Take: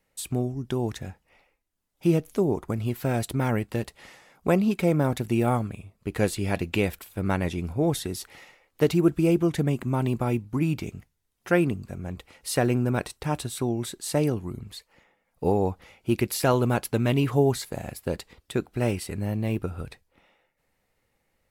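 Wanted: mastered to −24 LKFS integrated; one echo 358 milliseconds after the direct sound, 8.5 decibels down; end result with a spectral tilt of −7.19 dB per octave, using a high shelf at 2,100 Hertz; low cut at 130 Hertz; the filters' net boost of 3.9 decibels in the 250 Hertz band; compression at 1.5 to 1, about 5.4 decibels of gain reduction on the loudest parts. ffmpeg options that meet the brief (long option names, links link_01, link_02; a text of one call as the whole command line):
ffmpeg -i in.wav -af "highpass=130,equalizer=frequency=250:width_type=o:gain=6,highshelf=frequency=2100:gain=-8,acompressor=threshold=-28dB:ratio=1.5,aecho=1:1:358:0.376,volume=4.5dB" out.wav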